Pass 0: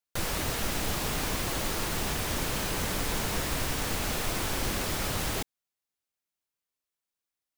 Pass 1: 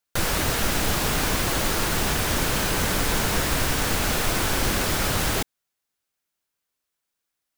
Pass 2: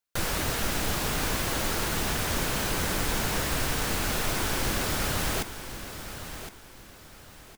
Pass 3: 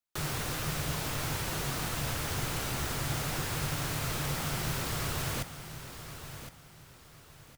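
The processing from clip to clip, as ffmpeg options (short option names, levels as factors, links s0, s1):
-af "equalizer=f=1500:t=o:w=0.34:g=3,volume=2.24"
-af "aecho=1:1:1063|2126|3189:0.282|0.0902|0.0289,volume=0.562"
-af "afreqshift=-160,volume=0.531"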